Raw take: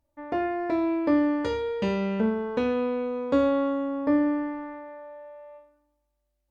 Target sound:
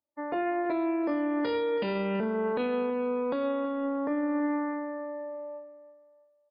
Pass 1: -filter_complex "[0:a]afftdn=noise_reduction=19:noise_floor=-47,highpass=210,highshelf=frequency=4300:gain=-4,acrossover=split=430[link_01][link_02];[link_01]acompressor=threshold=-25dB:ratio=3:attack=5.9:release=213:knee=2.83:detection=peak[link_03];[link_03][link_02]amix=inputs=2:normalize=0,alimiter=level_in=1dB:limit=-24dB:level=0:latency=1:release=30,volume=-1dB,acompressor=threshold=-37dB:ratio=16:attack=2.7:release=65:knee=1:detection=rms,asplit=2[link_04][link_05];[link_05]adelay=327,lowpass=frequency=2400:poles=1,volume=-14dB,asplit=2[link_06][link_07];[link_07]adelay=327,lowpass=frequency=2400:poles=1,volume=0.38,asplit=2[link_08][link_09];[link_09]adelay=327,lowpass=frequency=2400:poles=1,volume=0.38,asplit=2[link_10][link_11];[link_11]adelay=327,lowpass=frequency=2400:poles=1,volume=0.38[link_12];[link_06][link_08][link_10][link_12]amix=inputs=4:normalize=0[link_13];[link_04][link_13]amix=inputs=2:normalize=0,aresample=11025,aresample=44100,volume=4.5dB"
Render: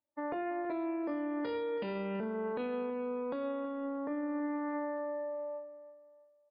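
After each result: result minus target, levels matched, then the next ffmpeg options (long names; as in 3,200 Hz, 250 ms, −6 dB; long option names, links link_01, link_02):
downward compressor: peak gain reduction +7 dB; 4,000 Hz band −3.0 dB
-filter_complex "[0:a]afftdn=noise_reduction=19:noise_floor=-47,highpass=210,highshelf=frequency=4300:gain=-4,acrossover=split=430[link_01][link_02];[link_01]acompressor=threshold=-25dB:ratio=3:attack=5.9:release=213:knee=2.83:detection=peak[link_03];[link_03][link_02]amix=inputs=2:normalize=0,alimiter=level_in=1dB:limit=-24dB:level=0:latency=1:release=30,volume=-1dB,acompressor=threshold=-29.5dB:ratio=16:attack=2.7:release=65:knee=1:detection=rms,asplit=2[link_04][link_05];[link_05]adelay=327,lowpass=frequency=2400:poles=1,volume=-14dB,asplit=2[link_06][link_07];[link_07]adelay=327,lowpass=frequency=2400:poles=1,volume=0.38,asplit=2[link_08][link_09];[link_09]adelay=327,lowpass=frequency=2400:poles=1,volume=0.38,asplit=2[link_10][link_11];[link_11]adelay=327,lowpass=frequency=2400:poles=1,volume=0.38[link_12];[link_06][link_08][link_10][link_12]amix=inputs=4:normalize=0[link_13];[link_04][link_13]amix=inputs=2:normalize=0,aresample=11025,aresample=44100,volume=4.5dB"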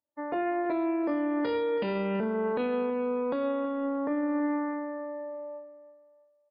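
4,000 Hz band −2.5 dB
-filter_complex "[0:a]afftdn=noise_reduction=19:noise_floor=-47,highpass=210,highshelf=frequency=4300:gain=3.5,acrossover=split=430[link_01][link_02];[link_01]acompressor=threshold=-25dB:ratio=3:attack=5.9:release=213:knee=2.83:detection=peak[link_03];[link_03][link_02]amix=inputs=2:normalize=0,alimiter=level_in=1dB:limit=-24dB:level=0:latency=1:release=30,volume=-1dB,acompressor=threshold=-29.5dB:ratio=16:attack=2.7:release=65:knee=1:detection=rms,asplit=2[link_04][link_05];[link_05]adelay=327,lowpass=frequency=2400:poles=1,volume=-14dB,asplit=2[link_06][link_07];[link_07]adelay=327,lowpass=frequency=2400:poles=1,volume=0.38,asplit=2[link_08][link_09];[link_09]adelay=327,lowpass=frequency=2400:poles=1,volume=0.38,asplit=2[link_10][link_11];[link_11]adelay=327,lowpass=frequency=2400:poles=1,volume=0.38[link_12];[link_06][link_08][link_10][link_12]amix=inputs=4:normalize=0[link_13];[link_04][link_13]amix=inputs=2:normalize=0,aresample=11025,aresample=44100,volume=4.5dB"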